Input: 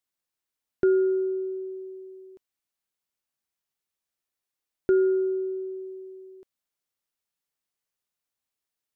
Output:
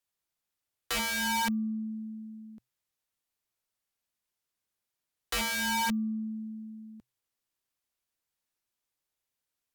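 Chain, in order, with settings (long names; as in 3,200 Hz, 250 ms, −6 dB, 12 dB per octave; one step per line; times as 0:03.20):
wrap-around overflow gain 25.5 dB
frequency shifter −140 Hz
wrong playback speed 48 kHz file played as 44.1 kHz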